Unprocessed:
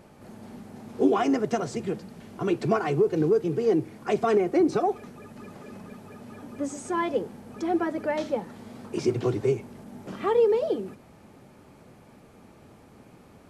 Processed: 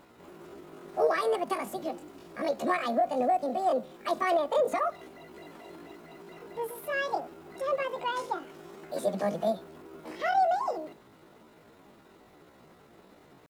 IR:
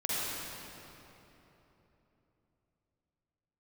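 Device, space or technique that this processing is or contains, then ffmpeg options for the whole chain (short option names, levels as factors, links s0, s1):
chipmunk voice: -af "asetrate=72056,aresample=44100,atempo=0.612027,volume=0.631"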